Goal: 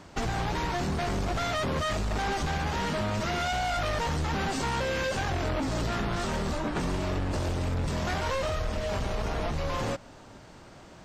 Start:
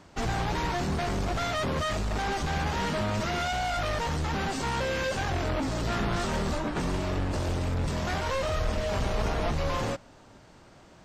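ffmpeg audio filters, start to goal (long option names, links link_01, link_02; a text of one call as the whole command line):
ffmpeg -i in.wav -af "acompressor=threshold=-31dB:ratio=6,volume=4dB" out.wav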